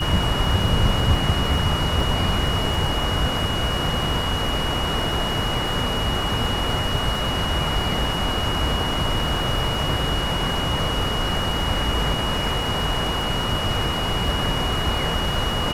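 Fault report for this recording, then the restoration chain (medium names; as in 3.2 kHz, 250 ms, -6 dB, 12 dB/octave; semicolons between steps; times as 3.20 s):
crackle 55 per s -30 dBFS
whine 2.9 kHz -27 dBFS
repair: de-click; band-stop 2.9 kHz, Q 30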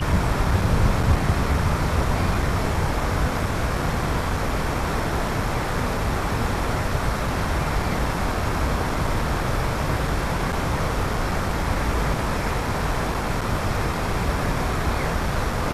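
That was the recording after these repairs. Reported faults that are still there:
nothing left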